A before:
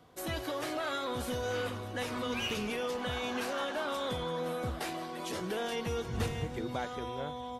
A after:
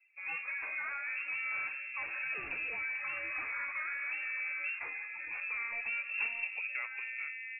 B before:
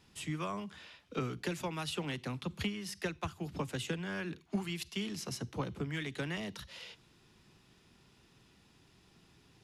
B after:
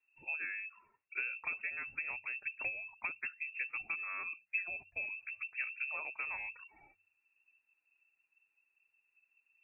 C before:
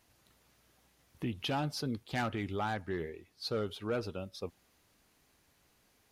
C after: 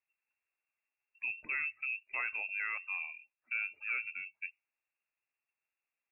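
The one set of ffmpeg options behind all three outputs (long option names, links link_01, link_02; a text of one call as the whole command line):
ffmpeg -i in.wav -filter_complex "[0:a]highshelf=frequency=2200:gain=-7,afftdn=noise_reduction=19:noise_floor=-51,lowpass=frequency=2400:width_type=q:width=0.5098,lowpass=frequency=2400:width_type=q:width=0.6013,lowpass=frequency=2400:width_type=q:width=0.9,lowpass=frequency=2400:width_type=q:width=2.563,afreqshift=-2800,equalizer=frequency=190:width=3.1:gain=-6,acrossover=split=380|650|1900[link_01][link_02][link_03][link_04];[link_01]bandreject=frequency=95.18:width_type=h:width=4,bandreject=frequency=190.36:width_type=h:width=4[link_05];[link_05][link_02][link_03][link_04]amix=inputs=4:normalize=0,volume=-2dB" out.wav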